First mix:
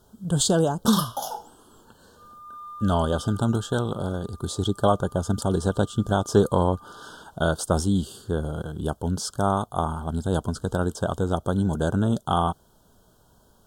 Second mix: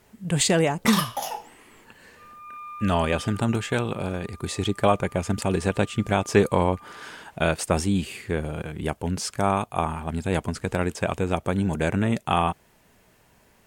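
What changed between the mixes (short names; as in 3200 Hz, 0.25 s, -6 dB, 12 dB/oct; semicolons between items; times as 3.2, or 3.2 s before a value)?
speech: add low shelf 63 Hz -7 dB; master: remove elliptic band-stop 1500–3200 Hz, stop band 50 dB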